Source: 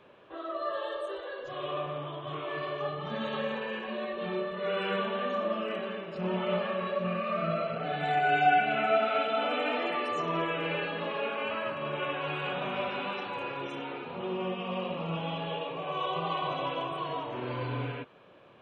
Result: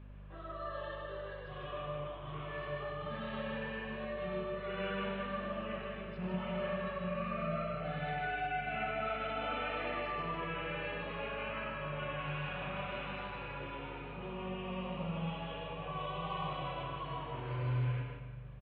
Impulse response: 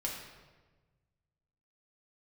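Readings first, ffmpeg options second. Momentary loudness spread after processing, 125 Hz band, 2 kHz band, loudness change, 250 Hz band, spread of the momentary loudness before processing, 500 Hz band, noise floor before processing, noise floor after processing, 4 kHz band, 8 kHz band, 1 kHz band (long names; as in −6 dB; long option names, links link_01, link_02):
7 LU, 0.0 dB, −7.0 dB, −7.5 dB, −5.5 dB, 11 LU, −8.5 dB, −43 dBFS, −46 dBFS, −8.5 dB, can't be measured, −9.0 dB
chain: -filter_complex "[0:a]firequalizer=gain_entry='entry(120,0);entry(250,-13);entry(1900,-7);entry(3800,-14)':delay=0.05:min_phase=1,alimiter=level_in=7.5dB:limit=-24dB:level=0:latency=1,volume=-7.5dB,aeval=exprs='val(0)+0.00282*(sin(2*PI*50*n/s)+sin(2*PI*2*50*n/s)/2+sin(2*PI*3*50*n/s)/3+sin(2*PI*4*50*n/s)/4+sin(2*PI*5*50*n/s)/5)':channel_layout=same,aecho=1:1:154:0.562,asplit=2[link_01][link_02];[1:a]atrim=start_sample=2205,adelay=98[link_03];[link_02][link_03]afir=irnorm=-1:irlink=0,volume=-8.5dB[link_04];[link_01][link_04]amix=inputs=2:normalize=0,aresample=11025,aresample=44100,volume=1dB"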